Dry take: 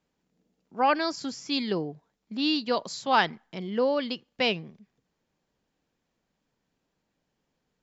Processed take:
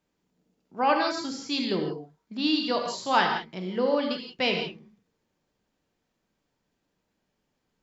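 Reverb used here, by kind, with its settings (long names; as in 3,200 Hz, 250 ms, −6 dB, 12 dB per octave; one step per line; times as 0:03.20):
reverb whose tail is shaped and stops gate 200 ms flat, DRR 2.5 dB
level −1 dB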